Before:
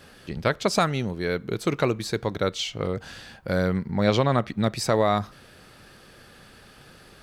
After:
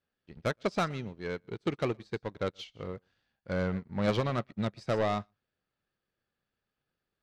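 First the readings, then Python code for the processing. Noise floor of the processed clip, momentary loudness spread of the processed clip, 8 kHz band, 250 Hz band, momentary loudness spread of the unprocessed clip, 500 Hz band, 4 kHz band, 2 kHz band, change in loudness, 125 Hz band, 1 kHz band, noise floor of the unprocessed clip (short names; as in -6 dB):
under -85 dBFS, 12 LU, under -15 dB, -8.0 dB, 9 LU, -8.0 dB, -12.0 dB, -8.5 dB, -8.5 dB, -8.0 dB, -9.0 dB, -51 dBFS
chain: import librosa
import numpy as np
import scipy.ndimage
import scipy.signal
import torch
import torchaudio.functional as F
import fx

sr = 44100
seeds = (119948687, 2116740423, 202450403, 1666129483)

p1 = fx.law_mismatch(x, sr, coded='A')
p2 = scipy.signal.sosfilt(scipy.signal.butter(2, 4500.0, 'lowpass', fs=sr, output='sos'), p1)
p3 = 10.0 ** (-20.5 / 20.0) * np.tanh(p2 / 10.0 ** (-20.5 / 20.0))
p4 = p3 + fx.echo_single(p3, sr, ms=121, db=-17.0, dry=0)
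y = fx.upward_expand(p4, sr, threshold_db=-43.0, expansion=2.5)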